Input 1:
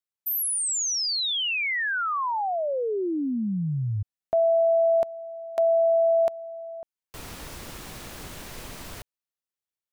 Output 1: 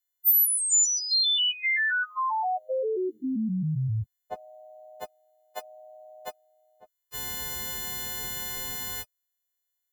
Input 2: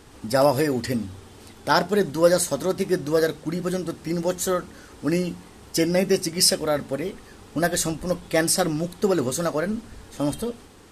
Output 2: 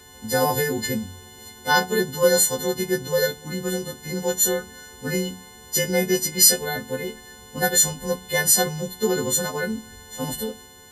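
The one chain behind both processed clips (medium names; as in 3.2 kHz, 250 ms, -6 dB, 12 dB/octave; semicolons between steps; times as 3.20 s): partials quantised in pitch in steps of 3 st; comb of notches 310 Hz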